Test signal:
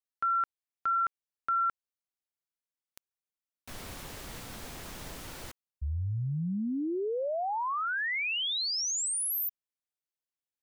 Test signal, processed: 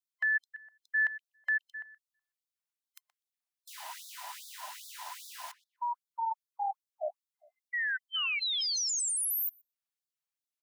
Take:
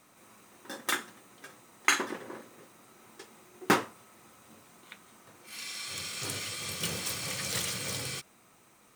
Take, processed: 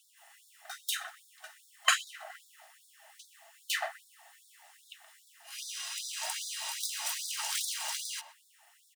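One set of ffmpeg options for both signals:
ffmpeg -i in.wav -filter_complex "[0:a]afftfilt=real='real(if(between(b,1,1008),(2*floor((b-1)/48)+1)*48-b,b),0)':imag='imag(if(between(b,1,1008),(2*floor((b-1)/48)+1)*48-b,b),0)*if(between(b,1,1008),-1,1)':win_size=2048:overlap=0.75,asplit=2[link_01][link_02];[link_02]adelay=124,lowpass=frequency=980:poles=1,volume=-8dB,asplit=2[link_03][link_04];[link_04]adelay=124,lowpass=frequency=980:poles=1,volume=0.44,asplit=2[link_05][link_06];[link_06]adelay=124,lowpass=frequency=980:poles=1,volume=0.44,asplit=2[link_07][link_08];[link_08]adelay=124,lowpass=frequency=980:poles=1,volume=0.44,asplit=2[link_09][link_10];[link_10]adelay=124,lowpass=frequency=980:poles=1,volume=0.44[link_11];[link_01][link_03][link_05][link_07][link_09][link_11]amix=inputs=6:normalize=0,afftfilt=real='re*gte(b*sr/1024,560*pow(3500/560,0.5+0.5*sin(2*PI*2.5*pts/sr)))':imag='im*gte(b*sr/1024,560*pow(3500/560,0.5+0.5*sin(2*PI*2.5*pts/sr)))':win_size=1024:overlap=0.75" out.wav

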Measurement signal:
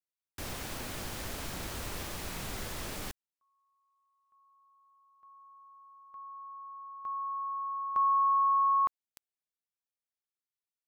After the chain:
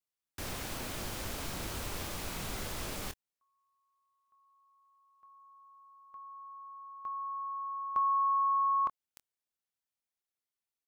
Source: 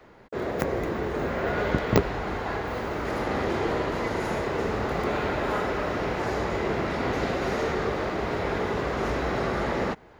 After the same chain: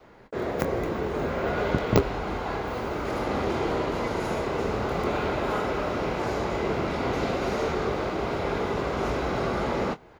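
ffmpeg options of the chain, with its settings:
ffmpeg -i in.wav -filter_complex "[0:a]adynamicequalizer=threshold=0.002:dfrequency=1800:dqfactor=6.3:tfrequency=1800:tqfactor=6.3:attack=5:release=100:ratio=0.375:range=4:mode=cutabove:tftype=bell,asplit=2[link_01][link_02];[link_02]adelay=25,volume=-12dB[link_03];[link_01][link_03]amix=inputs=2:normalize=0" out.wav

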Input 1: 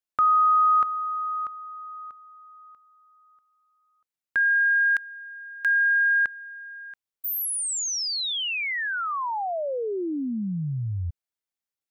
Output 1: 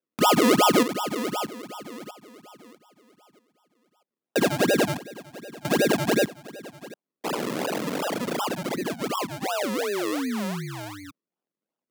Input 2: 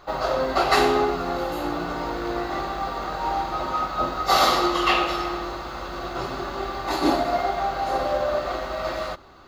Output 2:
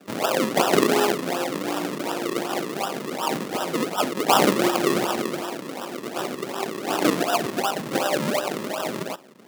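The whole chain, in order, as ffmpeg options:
ffmpeg -i in.wav -af "acrusher=samples=40:mix=1:aa=0.000001:lfo=1:lforange=40:lforate=2.7,tremolo=f=200:d=0.519,highpass=frequency=180:width=0.5412,highpass=frequency=180:width=1.3066,volume=3.5dB" out.wav

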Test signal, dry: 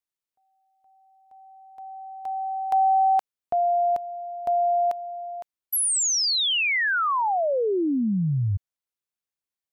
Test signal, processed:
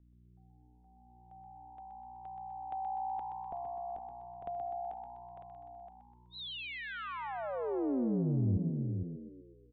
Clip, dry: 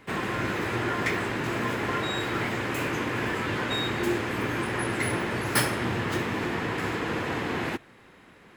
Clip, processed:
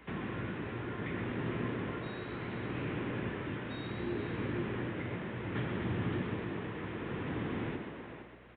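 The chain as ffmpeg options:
ffmpeg -i in.wav -filter_complex "[0:a]aresample=8000,aresample=44100,asplit=2[link_01][link_02];[link_02]adelay=460.6,volume=-9dB,highshelf=frequency=4000:gain=-10.4[link_03];[link_01][link_03]amix=inputs=2:normalize=0,tremolo=f=0.67:d=0.45,aeval=exprs='val(0)+0.00126*(sin(2*PI*60*n/s)+sin(2*PI*2*60*n/s)/2+sin(2*PI*3*60*n/s)/3+sin(2*PI*4*60*n/s)/4+sin(2*PI*5*60*n/s)/5)':channel_layout=same,acrossover=split=310[link_04][link_05];[link_05]acompressor=threshold=-52dB:ratio=2:attack=36:release=66:knee=2.83:detection=peak[link_06];[link_04][link_06]amix=inputs=2:normalize=0,asplit=2[link_07][link_08];[link_08]asplit=6[link_09][link_10][link_11][link_12][link_13][link_14];[link_09]adelay=125,afreqshift=61,volume=-7dB[link_15];[link_10]adelay=250,afreqshift=122,volume=-12.7dB[link_16];[link_11]adelay=375,afreqshift=183,volume=-18.4dB[link_17];[link_12]adelay=500,afreqshift=244,volume=-24dB[link_18];[link_13]adelay=625,afreqshift=305,volume=-29.7dB[link_19];[link_14]adelay=750,afreqshift=366,volume=-35.4dB[link_20];[link_15][link_16][link_17][link_18][link_19][link_20]amix=inputs=6:normalize=0[link_21];[link_07][link_21]amix=inputs=2:normalize=0,volume=-3.5dB" out.wav

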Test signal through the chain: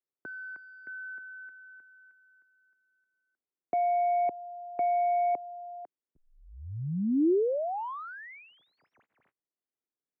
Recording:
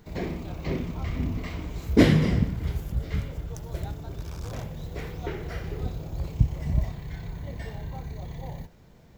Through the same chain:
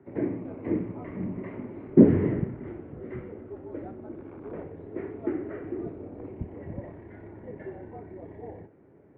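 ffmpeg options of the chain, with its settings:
ffmpeg -i in.wav -filter_complex "[0:a]equalizer=frequency=400:width=0.99:gain=14.5,acrossover=split=1000[link_01][link_02];[link_02]aeval=exprs='0.0251*(abs(mod(val(0)/0.0251+3,4)-2)-1)':channel_layout=same[link_03];[link_01][link_03]amix=inputs=2:normalize=0,highpass=frequency=170:width_type=q:width=0.5412,highpass=frequency=170:width_type=q:width=1.307,lowpass=frequency=2300:width_type=q:width=0.5176,lowpass=frequency=2300:width_type=q:width=0.7071,lowpass=frequency=2300:width_type=q:width=1.932,afreqshift=-62,volume=-7dB" out.wav

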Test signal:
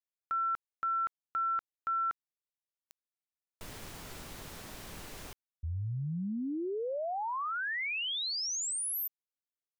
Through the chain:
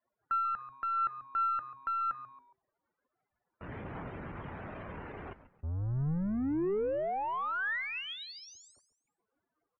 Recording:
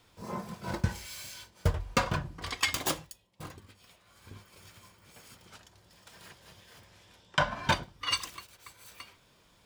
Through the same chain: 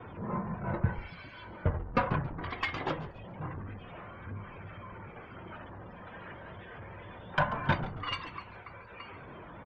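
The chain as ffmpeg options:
ffmpeg -i in.wav -filter_complex "[0:a]aeval=exprs='val(0)+0.5*0.0141*sgn(val(0))':channel_layout=same,lowpass=2000,afftdn=noise_reduction=29:noise_floor=-50,agate=range=-13dB:threshold=-59dB:ratio=3:release=117:detection=peak,highpass=66,adynamicequalizer=threshold=0.00501:dfrequency=140:dqfactor=2:tfrequency=140:tqfactor=2:attack=5:release=100:ratio=0.333:range=2:mode=boostabove:tftype=bell,aeval=exprs='(tanh(5.62*val(0)+0.3)-tanh(0.3))/5.62':channel_layout=same,aphaser=in_gain=1:out_gain=1:delay=4.1:decay=0.22:speed=0.25:type=triangular,asplit=2[link_01][link_02];[link_02]asplit=3[link_03][link_04][link_05];[link_03]adelay=138,afreqshift=-130,volume=-14.5dB[link_06];[link_04]adelay=276,afreqshift=-260,volume=-23.1dB[link_07];[link_05]adelay=414,afreqshift=-390,volume=-31.8dB[link_08];[link_06][link_07][link_08]amix=inputs=3:normalize=0[link_09];[link_01][link_09]amix=inputs=2:normalize=0" out.wav

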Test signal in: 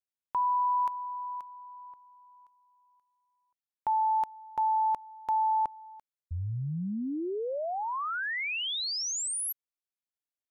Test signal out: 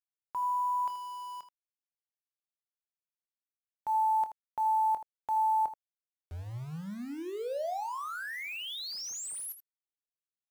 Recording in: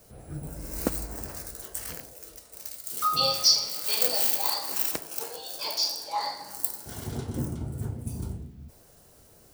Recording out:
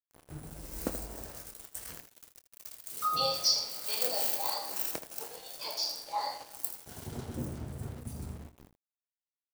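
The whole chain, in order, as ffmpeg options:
ffmpeg -i in.wav -af "aeval=exprs='val(0)*gte(abs(val(0)),0.0112)':channel_layout=same,aecho=1:1:25|80:0.237|0.237,adynamicequalizer=threshold=0.01:dfrequency=630:dqfactor=1.2:tfrequency=630:tqfactor=1.2:attack=5:release=100:ratio=0.375:range=3:mode=boostabove:tftype=bell,volume=-7dB" out.wav

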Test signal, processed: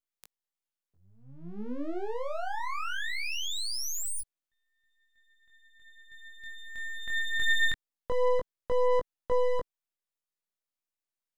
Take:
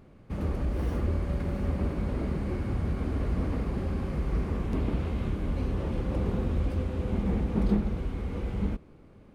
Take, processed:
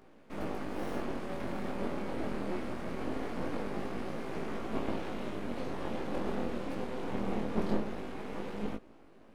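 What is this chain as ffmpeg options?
ffmpeg -i in.wav -af "highpass=frequency=220:width=0.5412,highpass=frequency=220:width=1.3066,aeval=exprs='max(val(0),0)':channel_layout=same,flanger=delay=18:depth=7.3:speed=0.22,volume=6.5dB" out.wav

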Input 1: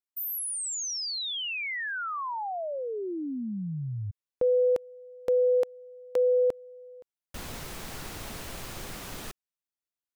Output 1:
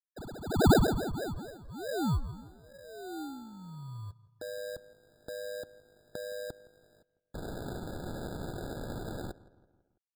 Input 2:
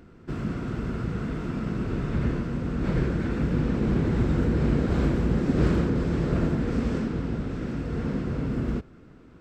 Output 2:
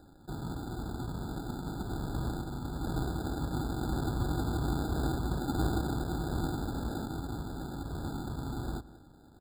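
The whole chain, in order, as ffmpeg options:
ffmpeg -i in.wav -filter_complex "[0:a]firequalizer=gain_entry='entry(110,0);entry(210,-8);entry(310,3);entry(700,-23);entry(1200,12);entry(2400,-17);entry(3400,-4);entry(4900,-6);entry(7600,8);entry(11000,-21)':delay=0.05:min_phase=1,acrusher=bits=11:mix=0:aa=0.000001,crystalizer=i=5:c=0,acrusher=samples=40:mix=1:aa=0.000001,asplit=2[link_01][link_02];[link_02]adelay=166,lowpass=frequency=2900:poles=1,volume=-19.5dB,asplit=2[link_03][link_04];[link_04]adelay=166,lowpass=frequency=2900:poles=1,volume=0.5,asplit=2[link_05][link_06];[link_06]adelay=166,lowpass=frequency=2900:poles=1,volume=0.5,asplit=2[link_07][link_08];[link_08]adelay=166,lowpass=frequency=2900:poles=1,volume=0.5[link_09];[link_03][link_05][link_07][link_09]amix=inputs=4:normalize=0[link_10];[link_01][link_10]amix=inputs=2:normalize=0,afftfilt=real='re*eq(mod(floor(b*sr/1024/1700),2),0)':imag='im*eq(mod(floor(b*sr/1024/1700),2),0)':win_size=1024:overlap=0.75,volume=-7.5dB" out.wav

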